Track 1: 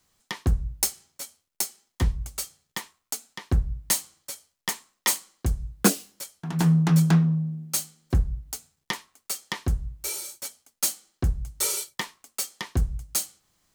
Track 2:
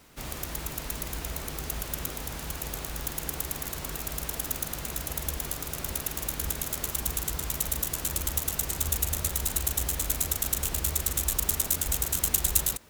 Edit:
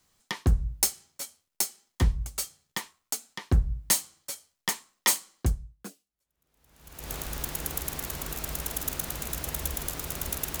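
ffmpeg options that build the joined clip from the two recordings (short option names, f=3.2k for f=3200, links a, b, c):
-filter_complex "[0:a]apad=whole_dur=10.6,atrim=end=10.6,atrim=end=7.12,asetpts=PTS-STARTPTS[a];[1:a]atrim=start=1.11:end=6.23,asetpts=PTS-STARTPTS[b];[a][b]acrossfade=d=1.64:c1=exp:c2=exp"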